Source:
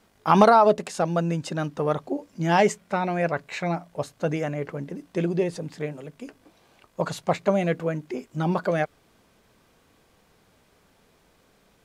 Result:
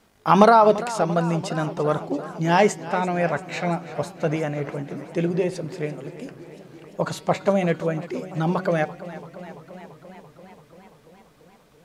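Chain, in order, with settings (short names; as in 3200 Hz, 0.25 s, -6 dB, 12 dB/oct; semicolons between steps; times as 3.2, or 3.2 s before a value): de-hum 188.1 Hz, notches 29; warbling echo 0.34 s, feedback 74%, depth 73 cents, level -16 dB; gain +2 dB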